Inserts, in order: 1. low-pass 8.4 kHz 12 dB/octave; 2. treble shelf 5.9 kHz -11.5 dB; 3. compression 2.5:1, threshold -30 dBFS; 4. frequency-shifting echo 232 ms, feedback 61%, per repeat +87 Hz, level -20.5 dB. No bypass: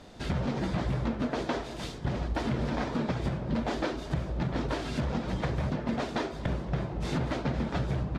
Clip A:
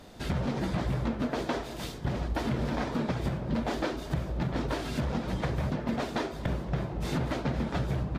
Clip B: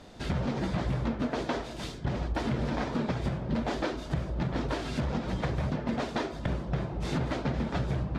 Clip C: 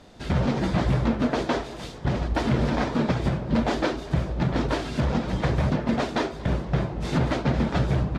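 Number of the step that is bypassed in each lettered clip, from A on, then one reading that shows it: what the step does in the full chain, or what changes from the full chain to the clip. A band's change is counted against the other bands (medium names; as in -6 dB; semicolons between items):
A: 1, 8 kHz band +1.5 dB; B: 4, echo-to-direct -18.5 dB to none; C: 3, mean gain reduction 5.5 dB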